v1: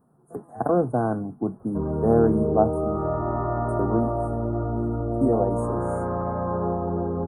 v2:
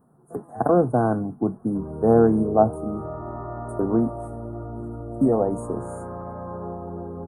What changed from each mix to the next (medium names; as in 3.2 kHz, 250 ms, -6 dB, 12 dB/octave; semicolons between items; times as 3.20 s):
speech +3.0 dB; background -7.5 dB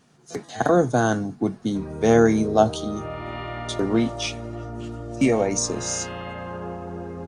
master: remove inverse Chebyshev band-stop 2.3–6.1 kHz, stop band 50 dB